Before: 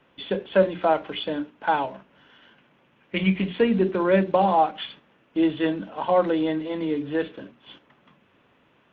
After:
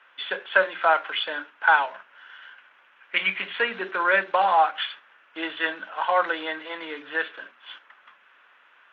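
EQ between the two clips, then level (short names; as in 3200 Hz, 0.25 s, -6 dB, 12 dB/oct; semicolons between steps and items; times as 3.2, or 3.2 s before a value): HPF 1100 Hz 12 dB/oct; LPF 3400 Hz 6 dB/oct; bell 1500 Hz +8 dB 0.66 oct; +6.5 dB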